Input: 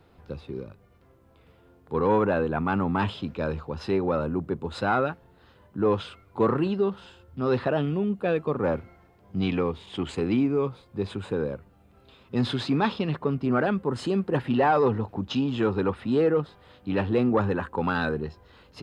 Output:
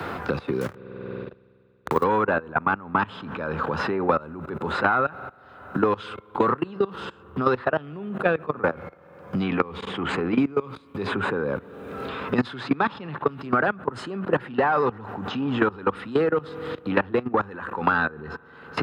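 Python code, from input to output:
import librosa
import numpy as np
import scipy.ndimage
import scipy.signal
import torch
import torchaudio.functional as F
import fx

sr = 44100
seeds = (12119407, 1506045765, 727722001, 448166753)

y = fx.delta_hold(x, sr, step_db=-44.0, at=(0.61, 2.04))
y = fx.peak_eq(y, sr, hz=1400.0, db=10.0, octaves=1.4)
y = fx.rev_spring(y, sr, rt60_s=3.2, pass_ms=(47,), chirp_ms=35, drr_db=19.0)
y = fx.level_steps(y, sr, step_db=21)
y = scipy.signal.sosfilt(scipy.signal.butter(2, 73.0, 'highpass', fs=sr, output='sos'), y)
y = fx.band_squash(y, sr, depth_pct=100)
y = y * 10.0 ** (2.0 / 20.0)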